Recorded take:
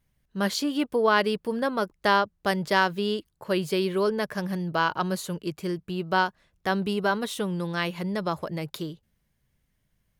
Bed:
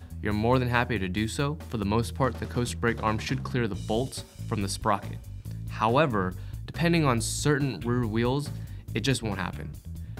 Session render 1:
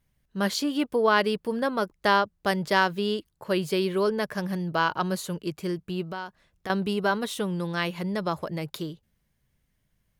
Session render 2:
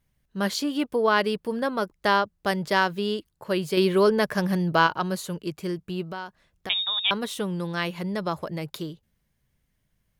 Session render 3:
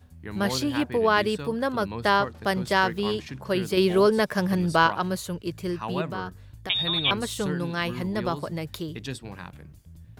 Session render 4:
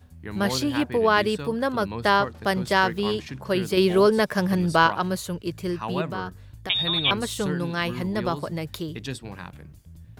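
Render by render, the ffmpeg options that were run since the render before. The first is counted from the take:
-filter_complex "[0:a]asettb=1/sr,asplit=3[a][b][c];[a]atrim=end=6.044[d];[b]atrim=start=6.04:end=6.7,asetpts=PTS-STARTPTS,afade=t=in:d=0.004:c=qsin,afade=t=out:st=0.656:d=0.004:c=qsin,acompressor=threshold=-34dB:ratio=3:attack=3.2:release=140:knee=1:detection=peak[e];[c]atrim=start=6.696[f];[d][e]acrossfade=d=0.004:c1=hsin:c2=qsin[g];[g][f]acrossfade=d=0.004:c1=qsin:c2=hsin"
-filter_complex "[0:a]asettb=1/sr,asplit=3[a][b][c];[a]atrim=end=3.774[d];[b]atrim=start=3.77:end=4.87,asetpts=PTS-STARTPTS,afade=t=in:d=0.004:c=qsin,afade=t=out:st=1.096:d=0.004:c=qsin,acontrast=32[e];[c]atrim=start=4.866[f];[d][e]acrossfade=d=0.004:c1=hsin:c2=qsin[g];[g][f]acrossfade=d=0.004:c1=qsin:c2=hsin,asettb=1/sr,asplit=3[h][i][j];[h]atrim=end=6.694[k];[i]atrim=start=6.69:end=7.11,asetpts=PTS-STARTPTS,afade=t=in:d=0.004:c=qsin,afade=t=out:st=0.416:d=0.004:c=qsin,lowpass=f=3.3k:t=q:w=0.5098,lowpass=f=3.3k:t=q:w=0.6013,lowpass=f=3.3k:t=q:w=0.9,lowpass=f=3.3k:t=q:w=2.563,afreqshift=-3900[l];[j]atrim=start=7.106[m];[k][l]acrossfade=d=0.004:c1=hsin:c2=qsin[n];[n][m]acrossfade=d=0.004:c1=qsin:c2=hsin"
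-filter_complex "[1:a]volume=-9dB[a];[0:a][a]amix=inputs=2:normalize=0"
-af "volume=1.5dB"

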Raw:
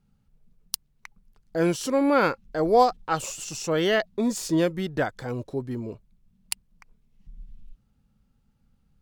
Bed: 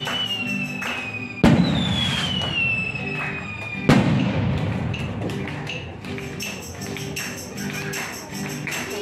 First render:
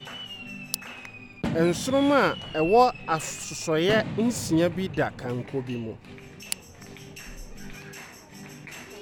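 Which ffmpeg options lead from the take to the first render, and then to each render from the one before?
-filter_complex "[1:a]volume=-14dB[a];[0:a][a]amix=inputs=2:normalize=0"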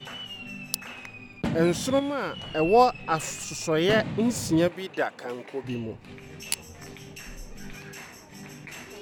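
-filter_complex "[0:a]asettb=1/sr,asplit=3[a][b][c];[a]atrim=end=1.994[d];[b]atrim=start=1.99:end=2.53,asetpts=PTS-STARTPTS,afade=t=in:d=0.004:c=qsin,afade=t=out:st=0.536:d=0.004:c=qsin,acompressor=threshold=-32dB:ratio=2:attack=3.2:release=140:knee=1:detection=peak[e];[c]atrim=start=2.526[f];[d][e]acrossfade=d=0.004:c1=hsin:c2=qsin[g];[g][f]acrossfade=d=0.004:c1=qsin:c2=hsin,asettb=1/sr,asplit=3[h][i][j];[h]atrim=end=4.684[k];[i]atrim=start=4.68:end=5.64,asetpts=PTS-STARTPTS,afade=t=in:d=0.004:c=qsin,afade=t=out:st=0.956:d=0.004:c=qsin,highpass=380[l];[j]atrim=start=5.636[m];[k][l]acrossfade=d=0.004:c1=hsin:c2=qsin[n];[n][m]acrossfade=d=0.004:c1=qsin:c2=hsin,asettb=1/sr,asplit=3[o][p][q];[o]atrim=end=6.284[r];[p]atrim=start=6.28:end=6.91,asetpts=PTS-STARTPTS,afade=t=in:d=0.004:c=qsin,afade=t=out:st=0.626:d=0.004:c=qsin,asplit=2[s][t];[t]adelay=13,volume=-2dB[u];[s][u]amix=inputs=2:normalize=0,atrim=end_sample=27783[v];[q]atrim=start=6.906[w];[r][v]acrossfade=d=0.004:c1=hsin:c2=qsin[x];[x][w]acrossfade=d=0.004:c1=qsin:c2=hsin"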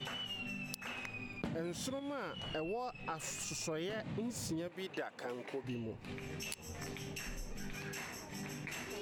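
-af "alimiter=limit=-17.5dB:level=0:latency=1:release=126,acompressor=threshold=-40dB:ratio=4"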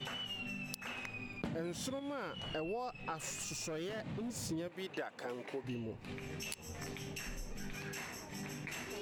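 -filter_complex "[0:a]asettb=1/sr,asplit=3[a][b][c];[a]atrim=end=3.424[d];[b]atrim=start=3.42:end=4.31,asetpts=PTS-STARTPTS,afade=t=in:d=0.004:c=qsin,afade=t=out:st=0.886:d=0.004:c=qsin,asoftclip=type=hard:threshold=-37dB[e];[c]atrim=start=4.306[f];[d][e]acrossfade=d=0.004:c1=hsin:c2=qsin[g];[g][f]acrossfade=d=0.004:c1=qsin:c2=hsin"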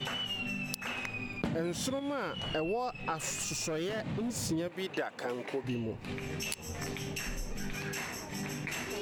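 -af "volume=6.5dB"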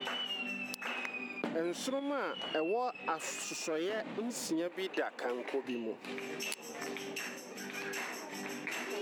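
-af "highpass=f=250:w=0.5412,highpass=f=250:w=1.3066,adynamicequalizer=threshold=0.00251:dfrequency=3600:dqfactor=0.7:tfrequency=3600:tqfactor=0.7:attack=5:release=100:ratio=0.375:range=3:mode=cutabove:tftype=highshelf"

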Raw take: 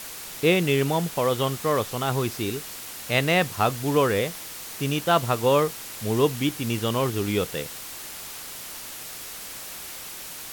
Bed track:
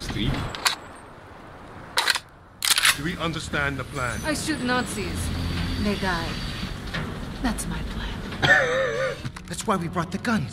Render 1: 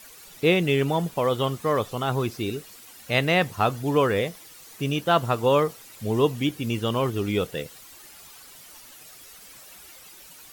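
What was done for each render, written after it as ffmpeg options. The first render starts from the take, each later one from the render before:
-af "afftdn=nr=12:nf=-38"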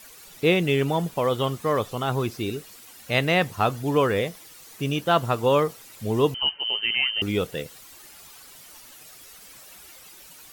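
-filter_complex "[0:a]asettb=1/sr,asplit=3[a][b][c];[a]atrim=end=6.344[d];[b]atrim=start=6.34:end=7.22,asetpts=PTS-STARTPTS,afade=t=in:d=0.004:c=qsin,afade=t=out:st=0.876:d=0.004:c=qsin,lowpass=f=2.7k:t=q:w=0.5098,lowpass=f=2.7k:t=q:w=0.6013,lowpass=f=2.7k:t=q:w=0.9,lowpass=f=2.7k:t=q:w=2.563,afreqshift=-3200[e];[c]atrim=start=7.216[f];[d][e]acrossfade=d=0.004:c1=hsin:c2=qsin[g];[g][f]acrossfade=d=0.004:c1=qsin:c2=hsin"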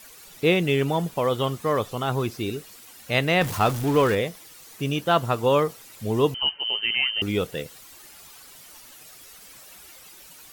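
-filter_complex "[0:a]asettb=1/sr,asplit=3[a][b][c];[a]atrim=end=3.414[d];[b]atrim=start=3.41:end=4.15,asetpts=PTS-STARTPTS,afade=t=in:d=0.004:c=qsin,afade=t=out:st=0.736:d=0.004:c=qsin,aeval=exprs='val(0)+0.5*0.0422*sgn(val(0))':c=same[e];[c]atrim=start=4.146[f];[d][e]acrossfade=d=0.004:c1=hsin:c2=qsin[g];[g][f]acrossfade=d=0.004:c1=qsin:c2=hsin"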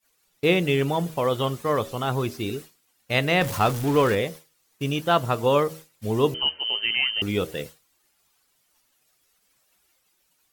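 -af "bandreject=f=79.15:t=h:w=4,bandreject=f=158.3:t=h:w=4,bandreject=f=237.45:t=h:w=4,bandreject=f=316.6:t=h:w=4,bandreject=f=395.75:t=h:w=4,bandreject=f=474.9:t=h:w=4,bandreject=f=554.05:t=h:w=4,bandreject=f=633.2:t=h:w=4,agate=range=-33dB:threshold=-33dB:ratio=3:detection=peak"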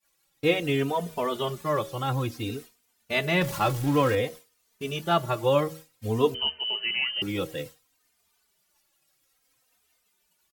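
-filter_complex "[0:a]asplit=2[a][b];[b]adelay=3.1,afreqshift=-0.56[c];[a][c]amix=inputs=2:normalize=1"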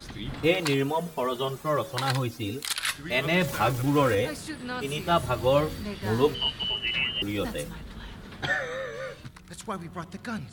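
-filter_complex "[1:a]volume=-10.5dB[a];[0:a][a]amix=inputs=2:normalize=0"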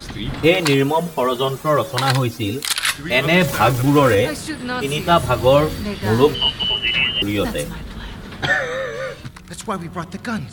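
-af "volume=9.5dB,alimiter=limit=-2dB:level=0:latency=1"

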